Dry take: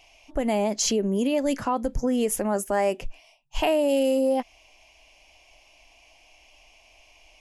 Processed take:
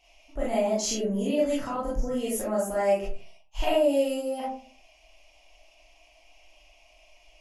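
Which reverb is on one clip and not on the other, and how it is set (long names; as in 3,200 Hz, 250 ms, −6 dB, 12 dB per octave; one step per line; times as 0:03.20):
comb and all-pass reverb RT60 0.43 s, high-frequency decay 0.4×, pre-delay 0 ms, DRR −7.5 dB
level −11 dB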